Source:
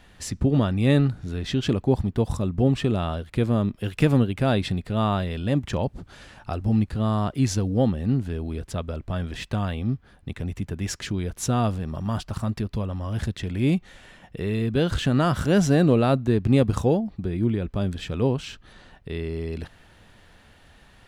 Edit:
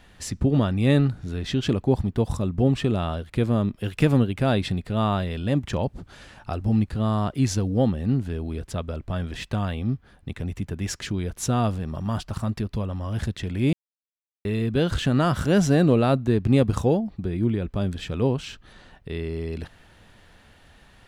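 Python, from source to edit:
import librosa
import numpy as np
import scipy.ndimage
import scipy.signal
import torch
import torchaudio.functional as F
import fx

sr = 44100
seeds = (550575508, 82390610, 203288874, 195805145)

y = fx.edit(x, sr, fx.silence(start_s=13.73, length_s=0.72), tone=tone)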